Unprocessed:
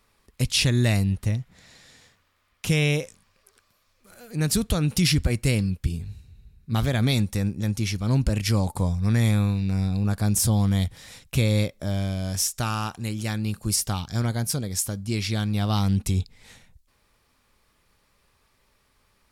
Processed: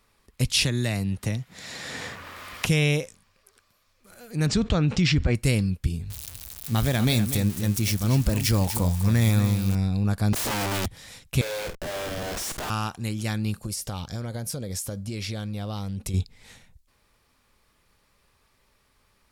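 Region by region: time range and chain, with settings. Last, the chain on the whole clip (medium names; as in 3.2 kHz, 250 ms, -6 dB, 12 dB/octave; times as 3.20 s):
0.64–2.66 s: high-pass 160 Hz 6 dB/octave + three bands compressed up and down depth 100%
4.46–5.35 s: steep low-pass 7.8 kHz 48 dB/octave + tone controls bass -1 dB, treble -11 dB + level flattener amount 50%
6.10–9.75 s: zero-crossing glitches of -22 dBFS + delay 243 ms -10.5 dB
10.33–10.86 s: treble shelf 7.8 kHz -6.5 dB + integer overflow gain 23 dB
11.41–12.70 s: Chebyshev high-pass 400 Hz, order 8 + Schmitt trigger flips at -37.5 dBFS + doubling 49 ms -9 dB
13.64–16.14 s: peaking EQ 530 Hz +8.5 dB 0.46 oct + compression 10:1, threshold -27 dBFS
whole clip: none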